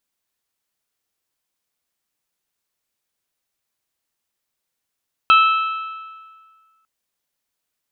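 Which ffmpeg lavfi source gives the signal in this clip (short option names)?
-f lavfi -i "aevalsrc='0.398*pow(10,-3*t/1.73)*sin(2*PI*1310*t)+0.2*pow(10,-3*t/1.405)*sin(2*PI*2620*t)+0.1*pow(10,-3*t/1.33)*sin(2*PI*3144*t)+0.0501*pow(10,-3*t/1.244)*sin(2*PI*3930*t)':d=1.55:s=44100"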